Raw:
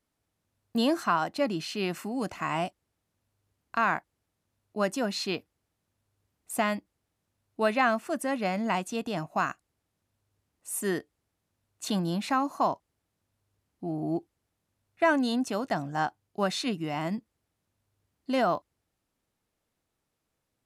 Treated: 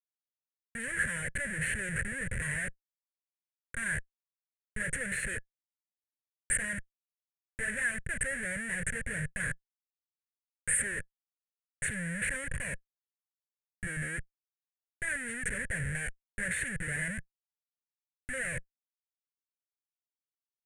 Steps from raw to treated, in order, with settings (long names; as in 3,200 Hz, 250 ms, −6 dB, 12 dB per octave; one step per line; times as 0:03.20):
comparator with hysteresis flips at −38.5 dBFS
drawn EQ curve 150 Hz 0 dB, 310 Hz −19 dB, 520 Hz −4 dB, 760 Hz −25 dB, 1,200 Hz −19 dB, 1,700 Hz +14 dB, 3,600 Hz −17 dB, 5,100 Hz −27 dB, 9,100 Hz +12 dB, 14,000 Hz −28 dB